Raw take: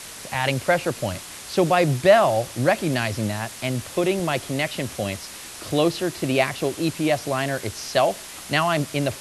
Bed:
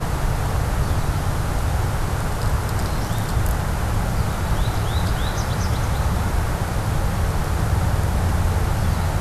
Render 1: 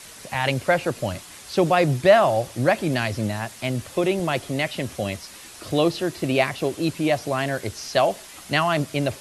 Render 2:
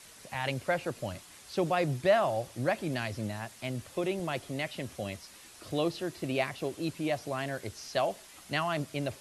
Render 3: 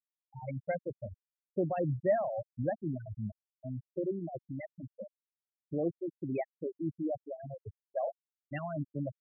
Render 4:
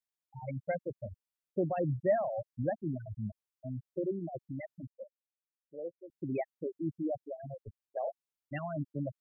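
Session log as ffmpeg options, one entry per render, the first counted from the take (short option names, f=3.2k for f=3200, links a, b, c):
-af "afftdn=nr=6:nf=-39"
-af "volume=-10dB"
-af "afftfilt=real='re*gte(hypot(re,im),0.112)':imag='im*gte(hypot(re,im),0.112)':win_size=1024:overlap=0.75,equalizer=f=1.2k:w=1.3:g=-13.5"
-filter_complex "[0:a]asettb=1/sr,asplit=3[a][b][c];[a]atrim=end=4.874[d];[b]atrim=start=4.87:end=6.1,asetpts=PTS-STARTPTS,afade=t=in:d=0.004:c=qsin,afade=t=out:st=1.226:d=0.004:c=qsin,asplit=3[e][f][g];[e]bandpass=f=530:t=q:w=8,volume=0dB[h];[f]bandpass=f=1.84k:t=q:w=8,volume=-6dB[i];[g]bandpass=f=2.48k:t=q:w=8,volume=-9dB[j];[h][i][j]amix=inputs=3:normalize=0[k];[c]atrim=start=6.096[l];[d][k]acrossfade=d=0.004:c1=hsin:c2=qsin[m];[m][l]acrossfade=d=0.004:c1=qsin:c2=hsin,asplit=3[n][o][p];[n]afade=t=out:st=7.59:d=0.02[q];[o]tremolo=f=120:d=0.571,afade=t=in:st=7.59:d=0.02,afade=t=out:st=8.04:d=0.02[r];[p]afade=t=in:st=8.04:d=0.02[s];[q][r][s]amix=inputs=3:normalize=0"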